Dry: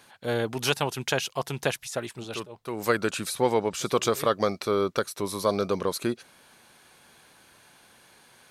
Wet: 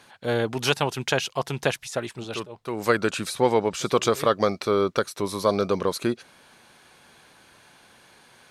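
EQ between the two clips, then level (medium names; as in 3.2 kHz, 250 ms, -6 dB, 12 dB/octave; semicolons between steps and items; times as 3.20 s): treble shelf 11 kHz -11.5 dB; +3.0 dB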